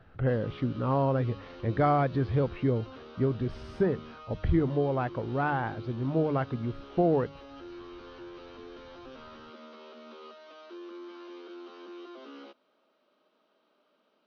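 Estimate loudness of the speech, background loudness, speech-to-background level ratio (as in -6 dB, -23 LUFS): -29.5 LUFS, -47.0 LUFS, 17.5 dB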